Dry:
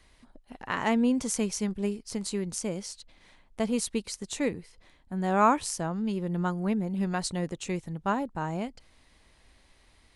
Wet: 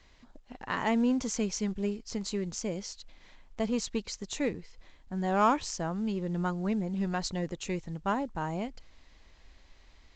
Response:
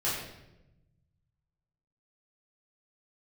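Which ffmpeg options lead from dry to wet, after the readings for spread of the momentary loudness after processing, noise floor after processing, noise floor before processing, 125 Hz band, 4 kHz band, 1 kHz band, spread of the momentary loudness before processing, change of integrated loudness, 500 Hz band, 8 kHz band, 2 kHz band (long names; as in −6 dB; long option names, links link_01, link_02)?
11 LU, −59 dBFS, −62 dBFS, −2.0 dB, −1.0 dB, −2.5 dB, 12 LU, −2.0 dB, −2.0 dB, −4.0 dB, −2.0 dB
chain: -filter_complex "[0:a]asubboost=boost=2:cutoff=61,asplit=2[link_01][link_02];[link_02]asoftclip=type=tanh:threshold=-25dB,volume=-3dB[link_03];[link_01][link_03]amix=inputs=2:normalize=0,volume=-5dB" -ar 16000 -c:a pcm_mulaw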